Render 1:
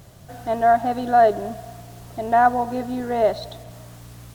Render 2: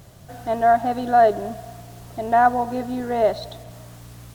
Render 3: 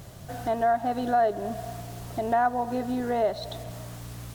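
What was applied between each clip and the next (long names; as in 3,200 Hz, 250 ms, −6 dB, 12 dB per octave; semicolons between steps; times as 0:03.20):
no processing that can be heard
downward compressor 2 to 1, threshold −30 dBFS, peak gain reduction 10.5 dB; level +2 dB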